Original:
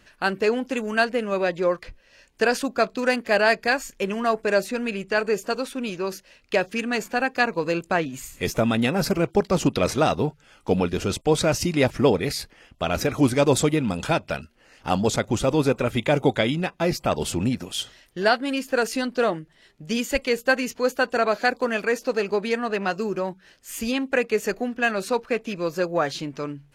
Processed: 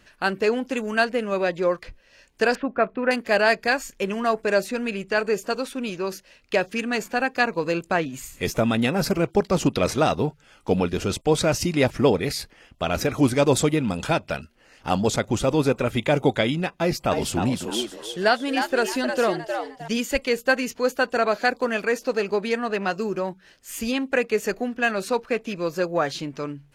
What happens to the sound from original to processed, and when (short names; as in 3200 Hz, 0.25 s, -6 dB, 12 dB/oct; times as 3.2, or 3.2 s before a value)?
2.55–3.11 LPF 2300 Hz 24 dB/oct
16.79–19.88 frequency-shifting echo 0.309 s, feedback 30%, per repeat +110 Hz, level -6.5 dB